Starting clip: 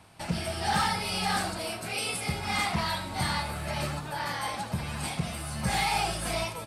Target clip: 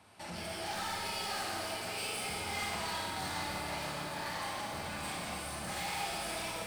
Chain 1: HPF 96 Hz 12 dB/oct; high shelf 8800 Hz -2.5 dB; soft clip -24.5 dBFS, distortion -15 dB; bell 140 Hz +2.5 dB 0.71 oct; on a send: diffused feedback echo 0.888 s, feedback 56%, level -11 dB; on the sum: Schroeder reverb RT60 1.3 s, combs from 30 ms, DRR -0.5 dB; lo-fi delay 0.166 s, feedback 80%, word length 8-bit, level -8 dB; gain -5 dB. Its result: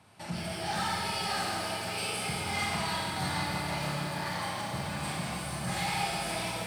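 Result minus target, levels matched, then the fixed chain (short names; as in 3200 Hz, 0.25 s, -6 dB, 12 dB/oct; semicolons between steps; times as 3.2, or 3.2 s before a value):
125 Hz band +6.0 dB; soft clip: distortion -8 dB
HPF 96 Hz 12 dB/oct; high shelf 8800 Hz -2.5 dB; soft clip -33.5 dBFS, distortion -7 dB; bell 140 Hz -7.5 dB 0.71 oct; on a send: diffused feedback echo 0.888 s, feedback 56%, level -11 dB; on the sum: Schroeder reverb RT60 1.3 s, combs from 30 ms, DRR -0.5 dB; lo-fi delay 0.166 s, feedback 80%, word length 8-bit, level -8 dB; gain -5 dB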